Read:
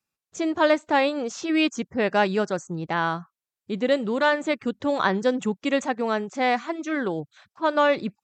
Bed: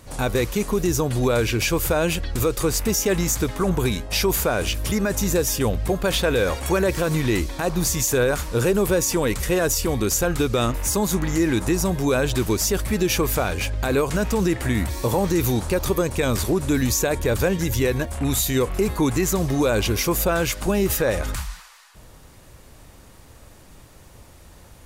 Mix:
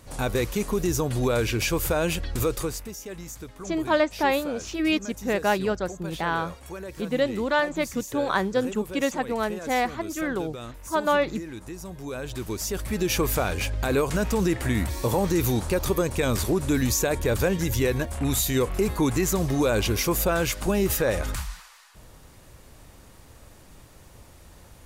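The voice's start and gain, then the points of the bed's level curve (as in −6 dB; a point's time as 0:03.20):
3.30 s, −2.0 dB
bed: 0:02.55 −3.5 dB
0:02.92 −17 dB
0:11.80 −17 dB
0:13.21 −2.5 dB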